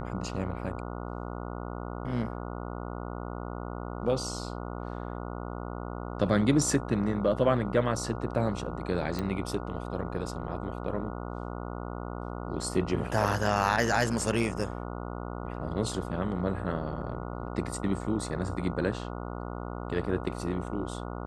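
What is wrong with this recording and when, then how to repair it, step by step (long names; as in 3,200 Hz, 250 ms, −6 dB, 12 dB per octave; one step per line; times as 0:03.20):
mains buzz 60 Hz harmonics 24 −37 dBFS
0:09.19: click −18 dBFS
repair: click removal
hum removal 60 Hz, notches 24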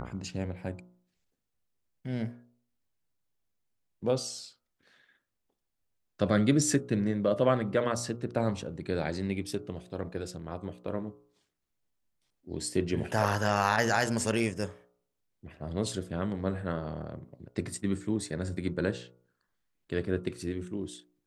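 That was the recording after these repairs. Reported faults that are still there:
none of them is left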